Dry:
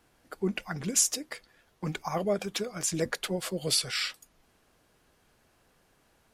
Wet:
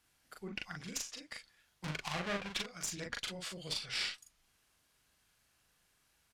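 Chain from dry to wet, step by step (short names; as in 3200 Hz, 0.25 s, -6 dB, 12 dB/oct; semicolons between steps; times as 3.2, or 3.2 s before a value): 1.84–2.62 half-waves squared off; treble ducked by the level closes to 2300 Hz, closed at -23 dBFS; passive tone stack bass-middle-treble 5-5-5; added harmonics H 4 -17 dB, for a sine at -24 dBFS; doubler 40 ms -3 dB; gain +2.5 dB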